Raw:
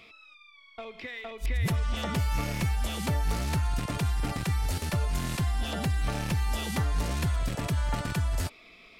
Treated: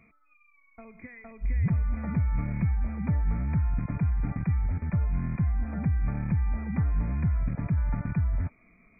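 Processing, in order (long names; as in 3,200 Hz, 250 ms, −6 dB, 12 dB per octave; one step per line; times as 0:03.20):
linear-phase brick-wall low-pass 2,500 Hz
low shelf with overshoot 290 Hz +9 dB, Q 1.5
level −7.5 dB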